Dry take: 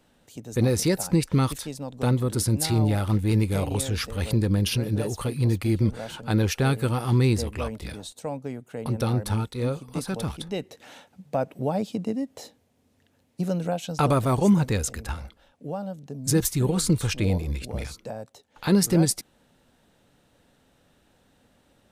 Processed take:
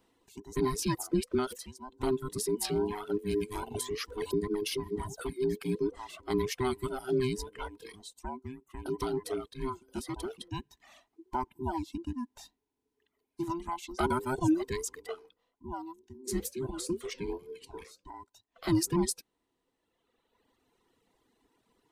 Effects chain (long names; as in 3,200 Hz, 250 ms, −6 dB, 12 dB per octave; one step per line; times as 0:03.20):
frequency inversion band by band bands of 500 Hz
reverb reduction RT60 1.7 s
0:16.01–0:18.14: flanger 2 Hz, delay 6 ms, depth 4.8 ms, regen −79%
level −7 dB